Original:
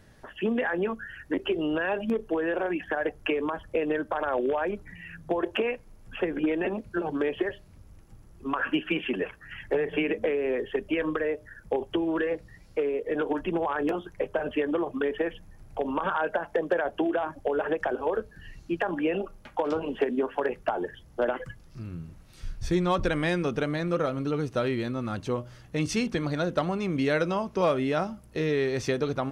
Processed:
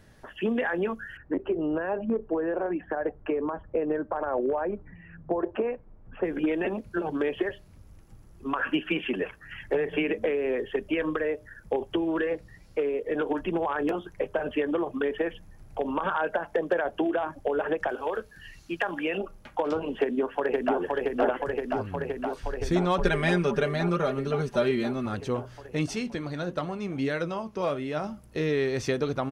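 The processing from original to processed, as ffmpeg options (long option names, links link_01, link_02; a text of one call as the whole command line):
ffmpeg -i in.wav -filter_complex "[0:a]asettb=1/sr,asplit=3[link_01][link_02][link_03];[link_01]atrim=end=1.174[link_04];[link_02]atrim=start=1.17:end=6.25,asetpts=PTS-STARTPTS,afade=type=in:duration=0.004:curve=qsin,afade=type=out:start_time=5.076:duration=0.004:curve=qsin,lowpass=1200[link_05];[link_03]atrim=start=6.246[link_06];[link_04][link_05]acrossfade=duration=0.004:curve1=hsin:curve2=qsin[link_07];[link_07][link_06]acrossfade=duration=0.004:curve1=qsin:curve2=hsin,asettb=1/sr,asplit=3[link_08][link_09][link_10];[link_08]atrim=end=17.894[link_11];[link_09]atrim=start=17.89:end=19.18,asetpts=PTS-STARTPTS,afade=type=in:duration=0.004:curve=qsin,afade=type=out:start_time=1.286:duration=0.004:curve=qsin,tiltshelf=frequency=970:gain=-5.5[link_12];[link_10]atrim=start=19.176[link_13];[link_11][link_12]acrossfade=duration=0.004:curve1=hsin:curve2=qsin[link_14];[link_14][link_13]acrossfade=duration=0.004:curve1=qsin:curve2=hsin,asplit=2[link_15][link_16];[link_16]afade=type=in:start_time=20.01:duration=0.01,afade=type=out:start_time=20.77:duration=0.01,aecho=0:1:520|1040|1560|2080|2600|3120|3640|4160|4680|5200|5720|6240:0.841395|0.673116|0.538493|0.430794|0.344635|0.275708|0.220567|0.176453|0.141163|0.11293|0.0903441|0.0722753[link_17];[link_15][link_17]amix=inputs=2:normalize=0,asettb=1/sr,asplit=3[link_18][link_19][link_20];[link_18]atrim=end=22.994[link_21];[link_19]atrim=start=22.99:end=25.06,asetpts=PTS-STARTPTS,afade=type=in:duration=0.004:curve=qsin,afade=type=out:start_time=2.066:duration=0.004:curve=qsin,aecho=1:1:5:0.75,atrim=end_sample=91287[link_22];[link_20]atrim=start=25.056[link_23];[link_21][link_22]acrossfade=duration=0.004:curve1=hsin:curve2=qsin[link_24];[link_24][link_23]acrossfade=duration=0.004:curve1=qsin:curve2=hsin,asettb=1/sr,asplit=3[link_25][link_26][link_27];[link_25]atrim=end=25.864[link_28];[link_26]atrim=start=25.86:end=28.04,asetpts=PTS-STARTPTS,afade=type=in:duration=0.004:curve=qsin,afade=type=out:start_time=2.176:duration=0.004:curve=qsin,flanger=delay=5.2:depth=4.6:regen=68:speed=1.5:shape=triangular[link_29];[link_27]atrim=start=28.036[link_30];[link_28][link_29]acrossfade=duration=0.004:curve1=hsin:curve2=qsin[link_31];[link_31][link_30]acrossfade=duration=0.004:curve1=qsin:curve2=hsin" out.wav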